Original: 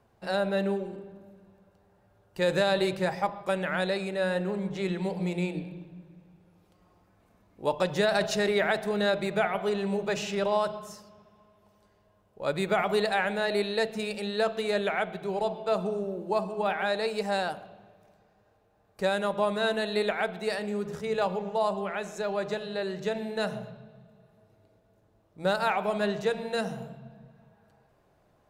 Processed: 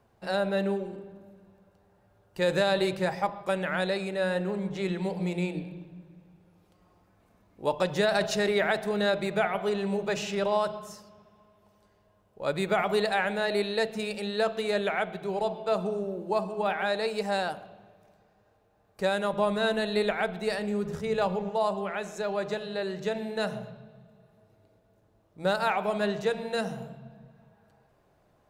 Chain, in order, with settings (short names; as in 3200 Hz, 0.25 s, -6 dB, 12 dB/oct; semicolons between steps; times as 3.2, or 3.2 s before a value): 19.33–21.51 low shelf 120 Hz +11 dB